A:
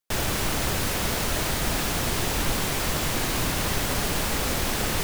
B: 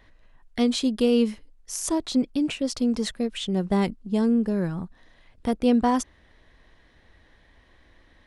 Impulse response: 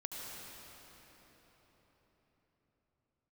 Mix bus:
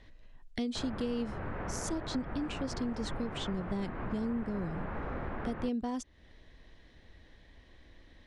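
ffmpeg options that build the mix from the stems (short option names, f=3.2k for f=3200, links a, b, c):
-filter_complex "[0:a]lowpass=f=1.7k:w=0.5412,lowpass=f=1.7k:w=1.3066,adelay=650,volume=-2.5dB[a];[1:a]lowpass=7.1k,equalizer=f=1.2k:t=o:w=1.8:g=-7,volume=1dB[b];[a][b]amix=inputs=2:normalize=0,acompressor=threshold=-36dB:ratio=3"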